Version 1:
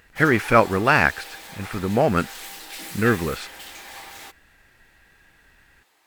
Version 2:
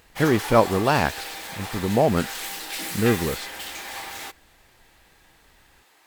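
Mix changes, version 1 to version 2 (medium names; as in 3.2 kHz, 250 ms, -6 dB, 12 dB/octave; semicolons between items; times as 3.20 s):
speech: add high-order bell 1.8 kHz -9 dB 1.3 oct; background +5.0 dB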